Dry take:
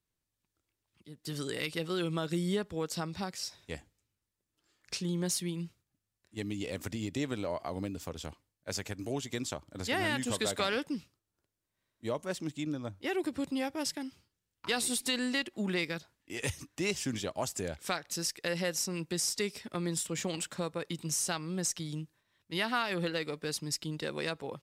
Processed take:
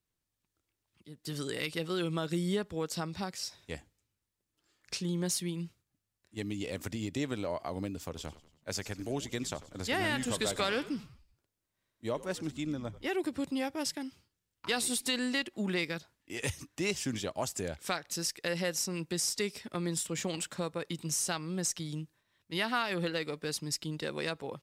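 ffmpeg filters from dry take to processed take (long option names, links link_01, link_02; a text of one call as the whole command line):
ffmpeg -i in.wav -filter_complex "[0:a]asettb=1/sr,asplit=3[link_01][link_02][link_03];[link_01]atrim=end=8.054[link_04];[link_02]atrim=start=8.05:end=13.08,asetpts=PTS-STARTPTS,afade=type=in:duration=0.004:curve=qsin,afade=type=out:start_time=5.026:duration=0.004:curve=qsin,asplit=5[link_05][link_06][link_07][link_08][link_09];[link_06]adelay=94,afreqshift=-78,volume=-17dB[link_10];[link_07]adelay=188,afreqshift=-156,volume=-23dB[link_11];[link_08]adelay=282,afreqshift=-234,volume=-29dB[link_12];[link_09]adelay=376,afreqshift=-312,volume=-35.1dB[link_13];[link_05][link_10][link_11][link_12][link_13]amix=inputs=5:normalize=0,atrim=end_sample=221823[link_14];[link_03]atrim=start=13.076[link_15];[link_04][link_14]acrossfade=duration=0.004:curve1=hsin:curve2=qsin[link_16];[link_16][link_15]acrossfade=duration=0.004:curve1=qsin:curve2=hsin" out.wav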